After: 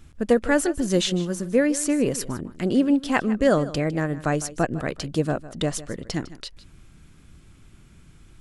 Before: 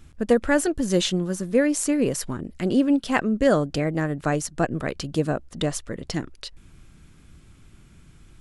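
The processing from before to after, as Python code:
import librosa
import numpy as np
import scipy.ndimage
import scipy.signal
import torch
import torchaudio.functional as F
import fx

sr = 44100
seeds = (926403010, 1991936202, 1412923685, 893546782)

y = x + 10.0 ** (-16.5 / 20.0) * np.pad(x, (int(155 * sr / 1000.0), 0))[:len(x)]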